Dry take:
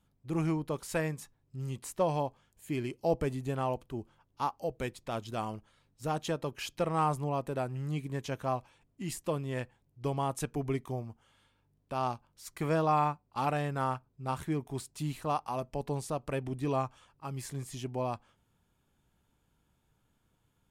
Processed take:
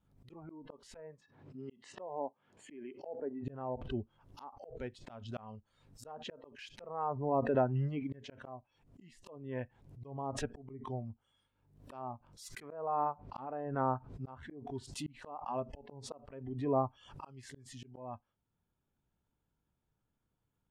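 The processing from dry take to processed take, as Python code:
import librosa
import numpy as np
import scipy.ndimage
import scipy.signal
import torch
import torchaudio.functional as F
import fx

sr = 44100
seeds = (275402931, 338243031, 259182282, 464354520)

y = fx.env_lowpass_down(x, sr, base_hz=1000.0, full_db=-27.5)
y = fx.bandpass_edges(y, sr, low_hz=fx.line((1.2, 160.0), (3.44, 260.0)), high_hz=3500.0, at=(1.2, 3.44), fade=0.02)
y = fx.noise_reduce_blind(y, sr, reduce_db=16)
y = fx.high_shelf(y, sr, hz=2200.0, db=-8.0)
y = fx.auto_swell(y, sr, attack_ms=696.0)
y = fx.pre_swell(y, sr, db_per_s=81.0)
y = y * librosa.db_to_amplitude(6.0)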